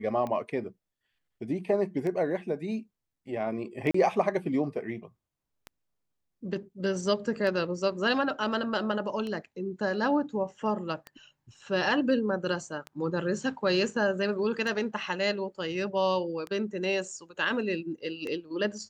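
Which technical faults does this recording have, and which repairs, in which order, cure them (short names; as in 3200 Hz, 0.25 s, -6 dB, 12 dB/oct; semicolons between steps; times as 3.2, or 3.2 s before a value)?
tick 33 1/3 rpm -23 dBFS
3.91–3.94 gap 34 ms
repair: de-click; interpolate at 3.91, 34 ms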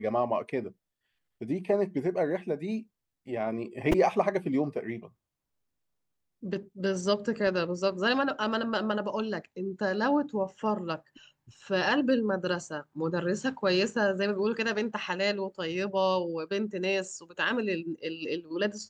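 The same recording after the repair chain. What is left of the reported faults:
none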